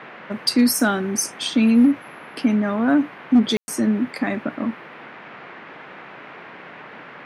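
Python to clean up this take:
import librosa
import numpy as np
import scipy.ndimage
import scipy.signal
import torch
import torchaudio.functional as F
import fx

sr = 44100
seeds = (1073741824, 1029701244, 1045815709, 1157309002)

y = fx.fix_declip(x, sr, threshold_db=-8.5)
y = fx.fix_ambience(y, sr, seeds[0], print_start_s=4.75, print_end_s=5.25, start_s=3.57, end_s=3.68)
y = fx.noise_reduce(y, sr, print_start_s=4.75, print_end_s=5.25, reduce_db=24.0)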